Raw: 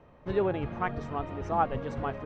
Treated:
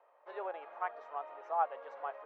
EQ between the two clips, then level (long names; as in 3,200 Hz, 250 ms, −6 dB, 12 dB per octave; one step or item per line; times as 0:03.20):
high-pass filter 570 Hz 24 dB per octave
resonant band-pass 750 Hz, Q 0.72
−4.0 dB